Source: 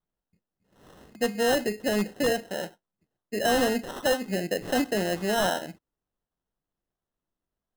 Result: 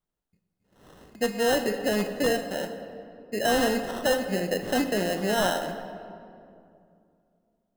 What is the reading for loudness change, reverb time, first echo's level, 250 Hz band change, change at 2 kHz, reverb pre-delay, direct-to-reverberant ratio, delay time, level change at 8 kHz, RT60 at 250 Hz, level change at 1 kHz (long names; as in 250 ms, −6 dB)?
+0.5 dB, 2.5 s, no echo audible, +0.5 dB, +0.5 dB, 27 ms, 7.5 dB, no echo audible, +0.5 dB, 3.1 s, +1.0 dB